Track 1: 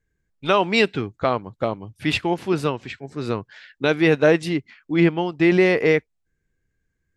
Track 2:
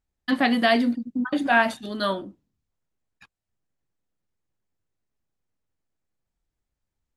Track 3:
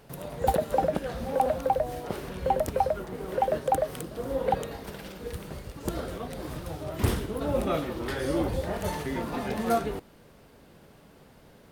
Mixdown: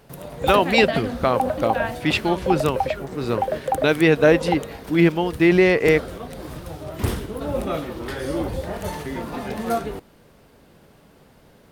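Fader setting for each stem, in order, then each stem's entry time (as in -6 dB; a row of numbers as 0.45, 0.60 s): +1.0, -8.5, +2.0 dB; 0.00, 0.25, 0.00 s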